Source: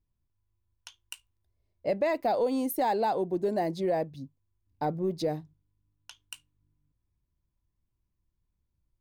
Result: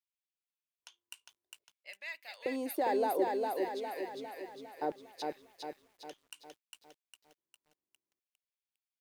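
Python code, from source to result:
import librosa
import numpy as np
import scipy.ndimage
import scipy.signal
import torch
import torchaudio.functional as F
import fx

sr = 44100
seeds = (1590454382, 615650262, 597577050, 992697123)

y = fx.dynamic_eq(x, sr, hz=1700.0, q=4.5, threshold_db=-55.0, ratio=4.0, max_db=5)
y = fx.filter_lfo_highpass(y, sr, shape='square', hz=0.61, low_hz=370.0, high_hz=2500.0, q=2.1)
y = fx.echo_crushed(y, sr, ms=405, feedback_pct=55, bits=10, wet_db=-3.0)
y = y * librosa.db_to_amplitude(-7.5)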